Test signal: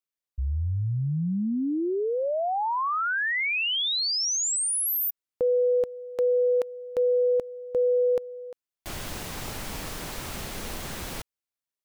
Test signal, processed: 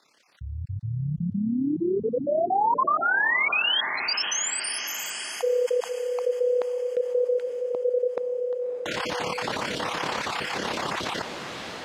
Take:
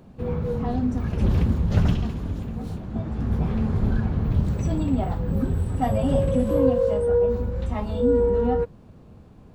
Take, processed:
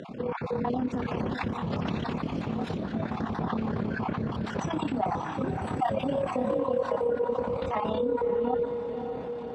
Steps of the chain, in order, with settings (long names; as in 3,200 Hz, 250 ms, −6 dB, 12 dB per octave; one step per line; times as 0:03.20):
time-frequency cells dropped at random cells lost 30%
brickwall limiter −22 dBFS
automatic gain control gain up to 4 dB
low-shelf EQ 250 Hz −7.5 dB
amplitude modulation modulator 34 Hz, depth 40%
band-pass filter 150–4,300 Hz
feedback delay with all-pass diffusion 571 ms, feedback 48%, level −12.5 dB
dynamic equaliser 1,000 Hz, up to +5 dB, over −48 dBFS, Q 2.1
envelope flattener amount 50%